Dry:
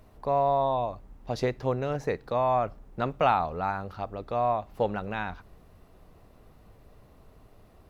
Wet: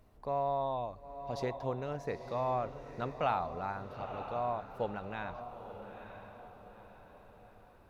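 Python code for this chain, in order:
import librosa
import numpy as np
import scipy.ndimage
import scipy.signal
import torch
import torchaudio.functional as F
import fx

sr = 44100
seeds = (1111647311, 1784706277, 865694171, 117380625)

y = fx.echo_diffused(x, sr, ms=929, feedback_pct=44, wet_db=-9.5)
y = y * librosa.db_to_amplitude(-8.5)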